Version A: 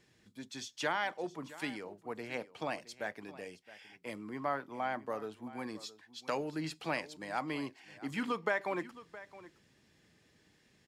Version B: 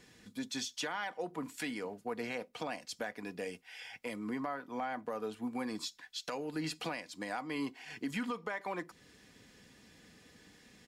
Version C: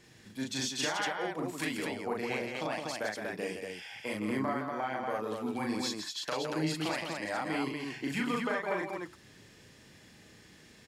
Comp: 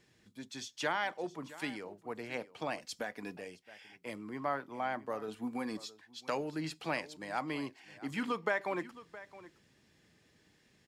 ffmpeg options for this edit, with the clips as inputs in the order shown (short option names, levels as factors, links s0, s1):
-filter_complex "[1:a]asplit=2[s0][s1];[0:a]asplit=3[s2][s3][s4];[s2]atrim=end=2.832[s5];[s0]atrim=start=2.828:end=3.372[s6];[s3]atrim=start=3.368:end=5.282[s7];[s1]atrim=start=5.278:end=5.772[s8];[s4]atrim=start=5.768[s9];[s5][s6]acrossfade=d=0.004:c1=hsin:c2=hsin[s10];[s10][s7]acrossfade=d=0.004:c1=hsin:c2=hsin[s11];[s11][s8]acrossfade=d=0.004:c1=hsin:c2=hsin[s12];[s12][s9]acrossfade=d=0.004:c1=hsin:c2=hsin"